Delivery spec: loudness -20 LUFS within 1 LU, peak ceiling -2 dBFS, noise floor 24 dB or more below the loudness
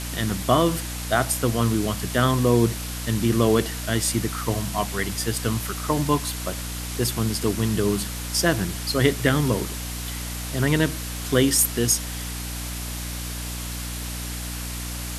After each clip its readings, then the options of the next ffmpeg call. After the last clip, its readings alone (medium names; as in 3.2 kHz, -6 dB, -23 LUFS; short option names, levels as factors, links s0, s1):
hum 60 Hz; highest harmonic 300 Hz; hum level -30 dBFS; noise floor -31 dBFS; noise floor target -48 dBFS; loudness -24.0 LUFS; peak level -3.0 dBFS; loudness target -20.0 LUFS
-> -af "bandreject=f=60:t=h:w=4,bandreject=f=120:t=h:w=4,bandreject=f=180:t=h:w=4,bandreject=f=240:t=h:w=4,bandreject=f=300:t=h:w=4"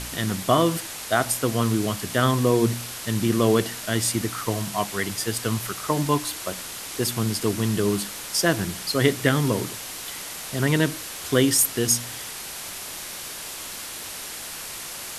hum not found; noise floor -36 dBFS; noise floor target -49 dBFS
-> -af "afftdn=nr=13:nf=-36"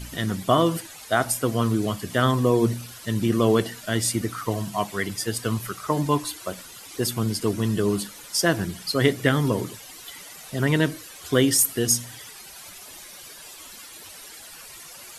noise floor -43 dBFS; noise floor target -48 dBFS
-> -af "afftdn=nr=6:nf=-43"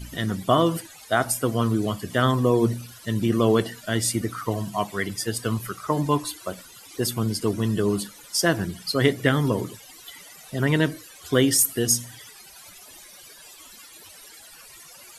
noise floor -47 dBFS; noise floor target -48 dBFS
-> -af "afftdn=nr=6:nf=-47"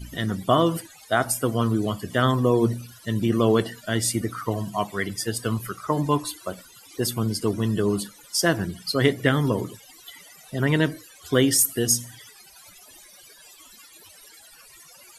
noise floor -50 dBFS; loudness -24.0 LUFS; peak level -3.5 dBFS; loudness target -20.0 LUFS
-> -af "volume=1.58,alimiter=limit=0.794:level=0:latency=1"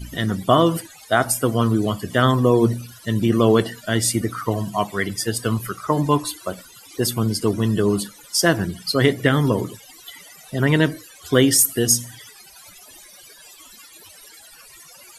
loudness -20.0 LUFS; peak level -2.0 dBFS; noise floor -46 dBFS